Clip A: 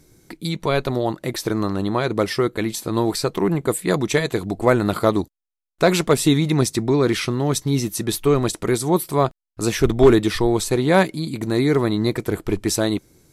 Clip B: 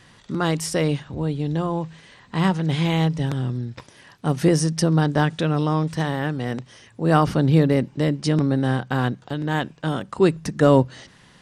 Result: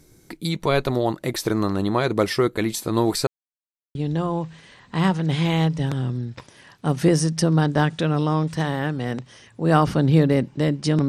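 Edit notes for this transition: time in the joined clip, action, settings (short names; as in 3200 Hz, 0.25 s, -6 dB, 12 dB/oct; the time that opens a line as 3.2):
clip A
3.27–3.95 mute
3.95 switch to clip B from 1.35 s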